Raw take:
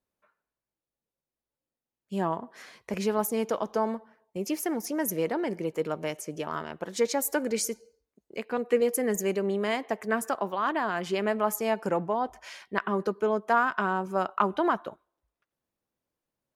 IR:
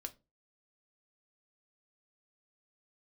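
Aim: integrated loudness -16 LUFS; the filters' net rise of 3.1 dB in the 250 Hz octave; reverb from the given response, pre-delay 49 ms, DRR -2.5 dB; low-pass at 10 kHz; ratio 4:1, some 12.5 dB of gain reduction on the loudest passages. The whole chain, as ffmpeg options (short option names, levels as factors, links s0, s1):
-filter_complex "[0:a]lowpass=10000,equalizer=f=250:t=o:g=4,acompressor=threshold=0.02:ratio=4,asplit=2[s0][s1];[1:a]atrim=start_sample=2205,adelay=49[s2];[s1][s2]afir=irnorm=-1:irlink=0,volume=2[s3];[s0][s3]amix=inputs=2:normalize=0,volume=6.68"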